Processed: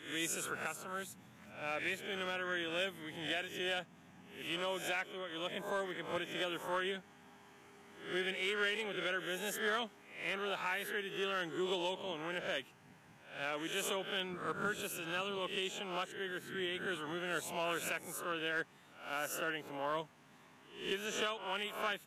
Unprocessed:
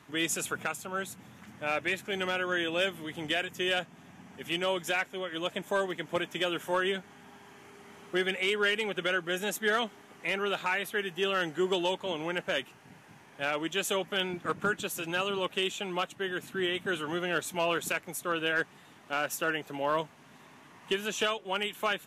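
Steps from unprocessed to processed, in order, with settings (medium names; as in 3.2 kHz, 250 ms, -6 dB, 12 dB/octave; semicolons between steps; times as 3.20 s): reverse spectral sustain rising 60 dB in 0.52 s; trim -9 dB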